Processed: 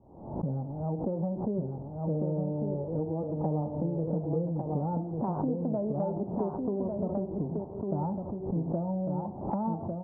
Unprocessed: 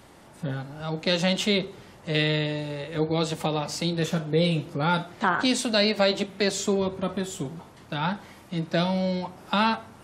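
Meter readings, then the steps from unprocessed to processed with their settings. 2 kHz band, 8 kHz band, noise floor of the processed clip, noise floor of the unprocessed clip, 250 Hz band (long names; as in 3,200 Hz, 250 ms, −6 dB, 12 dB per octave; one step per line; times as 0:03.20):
below −40 dB, below −40 dB, −41 dBFS, −50 dBFS, −3.5 dB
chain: Butterworth low-pass 920 Hz 48 dB per octave
noise gate with hold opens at −39 dBFS
low-shelf EQ 320 Hz +4.5 dB
downward compressor, threshold −29 dBFS, peak gain reduction 12.5 dB
on a send: single-tap delay 1,151 ms −4.5 dB
on the sum: background raised ahead of every attack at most 76 dB per second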